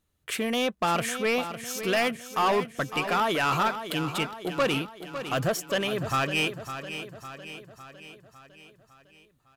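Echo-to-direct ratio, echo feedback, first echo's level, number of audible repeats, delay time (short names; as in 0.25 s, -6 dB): -9.0 dB, 55%, -10.5 dB, 5, 0.555 s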